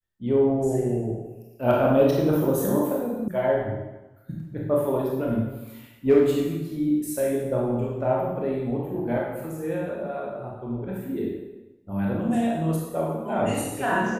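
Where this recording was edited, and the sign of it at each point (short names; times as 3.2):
3.28 sound cut off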